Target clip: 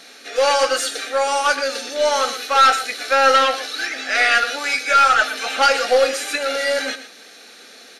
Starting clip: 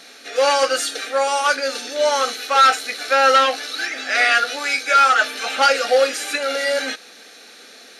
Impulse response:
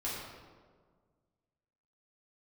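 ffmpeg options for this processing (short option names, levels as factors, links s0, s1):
-af "aecho=1:1:118:0.237,aeval=exprs='0.75*(cos(1*acos(clip(val(0)/0.75,-1,1)))-cos(1*PI/2))+0.0237*(cos(4*acos(clip(val(0)/0.75,-1,1)))-cos(4*PI/2))':c=same"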